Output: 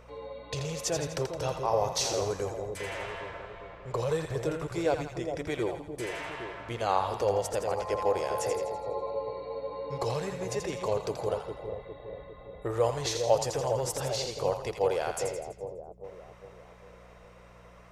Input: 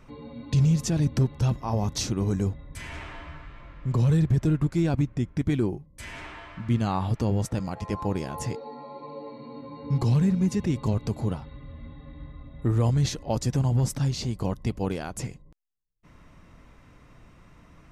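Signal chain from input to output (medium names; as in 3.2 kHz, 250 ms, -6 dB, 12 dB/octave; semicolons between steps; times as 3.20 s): mains buzz 60 Hz, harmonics 4, -40 dBFS; resonant low shelf 340 Hz -13.5 dB, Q 3; two-band feedback delay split 770 Hz, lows 405 ms, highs 83 ms, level -6 dB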